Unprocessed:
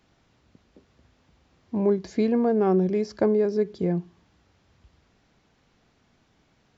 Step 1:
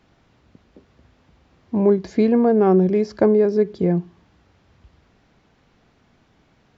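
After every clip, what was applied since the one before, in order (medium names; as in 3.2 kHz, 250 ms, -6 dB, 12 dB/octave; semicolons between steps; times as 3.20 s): treble shelf 4.9 kHz -9 dB; trim +6 dB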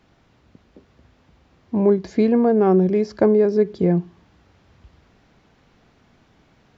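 gain riding 2 s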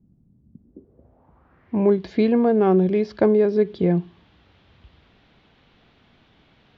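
low-pass sweep 200 Hz -> 3.5 kHz, 0.53–1.94 s; trim -1.5 dB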